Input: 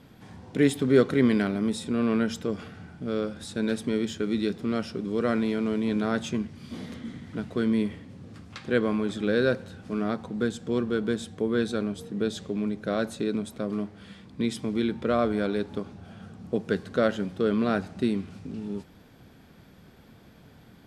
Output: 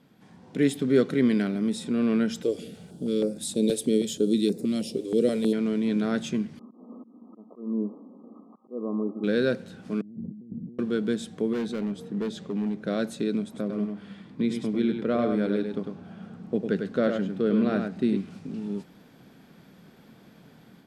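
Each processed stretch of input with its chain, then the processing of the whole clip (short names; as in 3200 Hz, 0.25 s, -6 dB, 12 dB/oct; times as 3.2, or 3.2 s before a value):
2.43–5.53 EQ curve 160 Hz 0 dB, 510 Hz +8 dB, 730 Hz -3 dB, 1500 Hz -11 dB, 3500 Hz +5 dB, 5500 Hz +3 dB, 8600 Hz +13 dB + stepped notch 6.3 Hz 200–3200 Hz
6.59–9.24 brick-wall FIR band-pass 200–1300 Hz + auto swell 0.321 s
10.01–10.79 inverse Chebyshev low-pass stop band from 1700 Hz, stop band 80 dB + negative-ratio compressor -42 dBFS
11.53–12.87 high shelf 4200 Hz -8.5 dB + hard clip -25.5 dBFS
13.44–18.17 high shelf 3700 Hz -9.5 dB + echo 0.1 s -5.5 dB
whole clip: dynamic EQ 1000 Hz, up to -6 dB, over -43 dBFS, Q 1.3; AGC gain up to 7.5 dB; resonant low shelf 120 Hz -9.5 dB, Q 1.5; gain -7.5 dB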